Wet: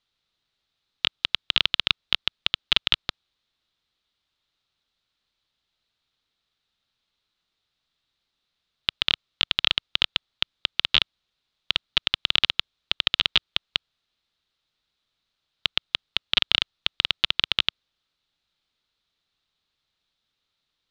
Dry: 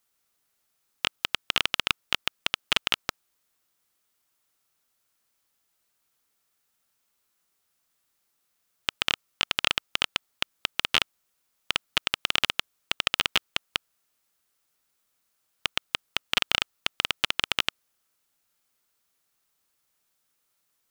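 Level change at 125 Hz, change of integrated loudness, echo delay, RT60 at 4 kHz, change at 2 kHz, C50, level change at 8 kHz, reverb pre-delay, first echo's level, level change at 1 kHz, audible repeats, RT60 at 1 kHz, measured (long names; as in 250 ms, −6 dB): +3.0 dB, +3.5 dB, no echo audible, no reverb audible, 0.0 dB, no reverb audible, below −10 dB, no reverb audible, no echo audible, −3.0 dB, no echo audible, no reverb audible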